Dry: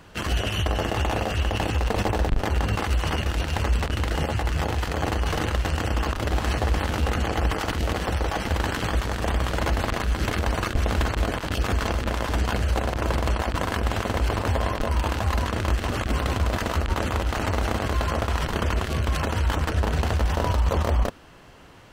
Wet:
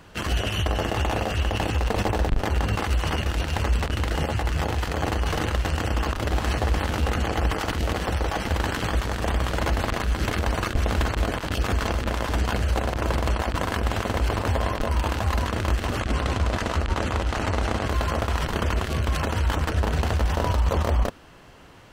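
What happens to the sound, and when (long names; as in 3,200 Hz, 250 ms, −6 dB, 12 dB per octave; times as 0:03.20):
0:16.01–0:17.88: low-pass filter 9,600 Hz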